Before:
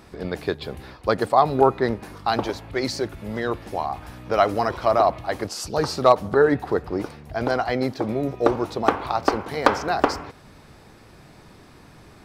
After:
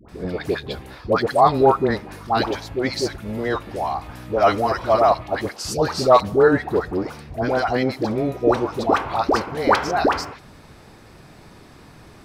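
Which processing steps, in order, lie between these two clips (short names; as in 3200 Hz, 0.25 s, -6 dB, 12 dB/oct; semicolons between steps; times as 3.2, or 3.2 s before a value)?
dispersion highs, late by 89 ms, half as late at 830 Hz; gain +2.5 dB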